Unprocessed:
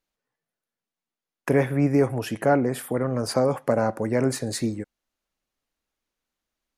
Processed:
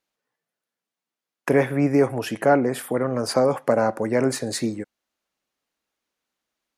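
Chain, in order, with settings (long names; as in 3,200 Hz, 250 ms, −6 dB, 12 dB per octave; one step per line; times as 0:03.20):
high-pass filter 220 Hz 6 dB per octave
high-shelf EQ 9,200 Hz −4 dB
level +3.5 dB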